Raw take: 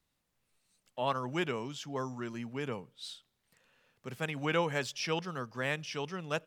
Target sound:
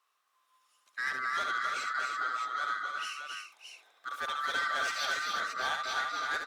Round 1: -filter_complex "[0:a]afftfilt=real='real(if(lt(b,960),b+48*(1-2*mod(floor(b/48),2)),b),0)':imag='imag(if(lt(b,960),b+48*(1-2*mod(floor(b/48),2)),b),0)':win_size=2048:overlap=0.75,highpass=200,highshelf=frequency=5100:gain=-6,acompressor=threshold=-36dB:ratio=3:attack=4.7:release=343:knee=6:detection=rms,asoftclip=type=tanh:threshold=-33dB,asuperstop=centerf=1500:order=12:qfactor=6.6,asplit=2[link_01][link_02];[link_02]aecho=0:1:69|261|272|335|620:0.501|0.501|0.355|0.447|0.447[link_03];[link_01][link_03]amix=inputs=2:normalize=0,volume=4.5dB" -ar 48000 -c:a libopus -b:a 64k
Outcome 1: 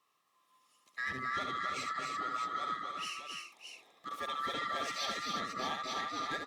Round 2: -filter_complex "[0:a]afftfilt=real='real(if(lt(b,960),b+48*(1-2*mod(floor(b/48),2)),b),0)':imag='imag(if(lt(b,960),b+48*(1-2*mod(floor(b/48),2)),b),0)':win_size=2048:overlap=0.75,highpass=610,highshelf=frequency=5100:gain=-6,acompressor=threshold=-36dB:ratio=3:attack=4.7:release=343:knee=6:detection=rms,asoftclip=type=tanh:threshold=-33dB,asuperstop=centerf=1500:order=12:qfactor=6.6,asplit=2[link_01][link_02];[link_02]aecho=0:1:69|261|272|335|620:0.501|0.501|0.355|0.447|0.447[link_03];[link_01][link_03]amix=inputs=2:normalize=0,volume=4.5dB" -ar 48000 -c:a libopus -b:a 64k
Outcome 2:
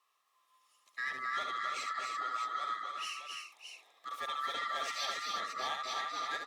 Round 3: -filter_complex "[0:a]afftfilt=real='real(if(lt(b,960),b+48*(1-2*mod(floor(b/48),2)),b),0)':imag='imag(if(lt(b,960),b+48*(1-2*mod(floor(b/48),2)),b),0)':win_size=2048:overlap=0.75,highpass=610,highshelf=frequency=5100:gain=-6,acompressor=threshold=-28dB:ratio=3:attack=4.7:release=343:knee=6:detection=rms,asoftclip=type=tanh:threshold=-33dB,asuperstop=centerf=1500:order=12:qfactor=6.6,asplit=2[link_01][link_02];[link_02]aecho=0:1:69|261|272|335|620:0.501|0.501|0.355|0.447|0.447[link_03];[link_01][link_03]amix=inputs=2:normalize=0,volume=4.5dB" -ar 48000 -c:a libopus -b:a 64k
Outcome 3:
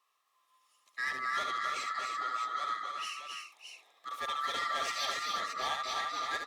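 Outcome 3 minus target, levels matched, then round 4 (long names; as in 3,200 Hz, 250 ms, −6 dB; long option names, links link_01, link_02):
2,000 Hz band −3.5 dB
-filter_complex "[0:a]afftfilt=real='real(if(lt(b,960),b+48*(1-2*mod(floor(b/48),2)),b),0)':imag='imag(if(lt(b,960),b+48*(1-2*mod(floor(b/48),2)),b),0)':win_size=2048:overlap=0.75,highpass=610,highshelf=frequency=5100:gain=-6,acompressor=threshold=-28dB:ratio=3:attack=4.7:release=343:knee=6:detection=rms,asoftclip=type=tanh:threshold=-33dB,asplit=2[link_01][link_02];[link_02]aecho=0:1:69|261|272|335|620:0.501|0.501|0.355|0.447|0.447[link_03];[link_01][link_03]amix=inputs=2:normalize=0,volume=4.5dB" -ar 48000 -c:a libopus -b:a 64k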